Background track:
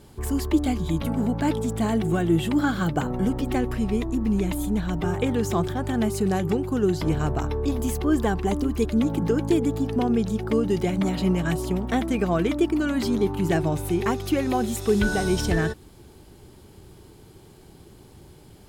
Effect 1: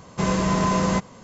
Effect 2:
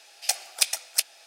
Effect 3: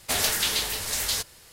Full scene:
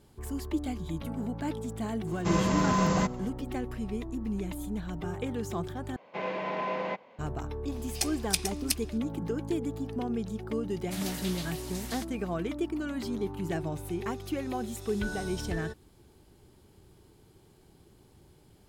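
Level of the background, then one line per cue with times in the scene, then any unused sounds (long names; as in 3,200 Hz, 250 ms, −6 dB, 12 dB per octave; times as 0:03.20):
background track −10 dB
0:02.07: mix in 1 −5 dB
0:05.96: overwrite with 1 −9 dB + loudspeaker in its box 360–3,400 Hz, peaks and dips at 560 Hz +6 dB, 820 Hz +5 dB, 1,200 Hz −6 dB, 2,300 Hz +7 dB
0:07.72: mix in 2 −6 dB
0:10.82: mix in 3 −15.5 dB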